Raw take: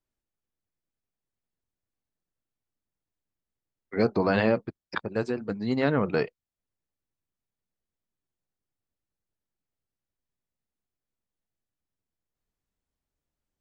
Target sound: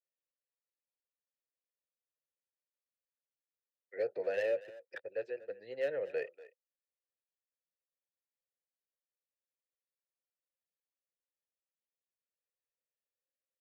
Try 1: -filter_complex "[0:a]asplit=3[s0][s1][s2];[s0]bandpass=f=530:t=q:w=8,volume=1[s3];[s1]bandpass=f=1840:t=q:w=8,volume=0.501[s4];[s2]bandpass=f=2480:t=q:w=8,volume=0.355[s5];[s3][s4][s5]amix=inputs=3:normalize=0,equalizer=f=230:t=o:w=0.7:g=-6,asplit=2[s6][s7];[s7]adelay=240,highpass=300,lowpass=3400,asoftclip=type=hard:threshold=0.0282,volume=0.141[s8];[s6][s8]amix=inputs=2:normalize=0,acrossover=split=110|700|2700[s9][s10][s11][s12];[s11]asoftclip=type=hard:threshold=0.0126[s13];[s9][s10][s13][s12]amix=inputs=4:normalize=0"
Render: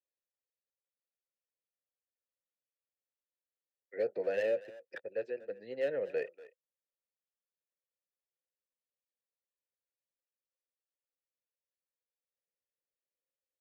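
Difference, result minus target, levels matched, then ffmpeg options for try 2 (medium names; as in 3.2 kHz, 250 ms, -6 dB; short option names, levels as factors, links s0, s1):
250 Hz band +3.5 dB
-filter_complex "[0:a]asplit=3[s0][s1][s2];[s0]bandpass=f=530:t=q:w=8,volume=1[s3];[s1]bandpass=f=1840:t=q:w=8,volume=0.501[s4];[s2]bandpass=f=2480:t=q:w=8,volume=0.355[s5];[s3][s4][s5]amix=inputs=3:normalize=0,equalizer=f=230:t=o:w=0.7:g=-18,asplit=2[s6][s7];[s7]adelay=240,highpass=300,lowpass=3400,asoftclip=type=hard:threshold=0.0282,volume=0.141[s8];[s6][s8]amix=inputs=2:normalize=0,acrossover=split=110|700|2700[s9][s10][s11][s12];[s11]asoftclip=type=hard:threshold=0.0126[s13];[s9][s10][s13][s12]amix=inputs=4:normalize=0"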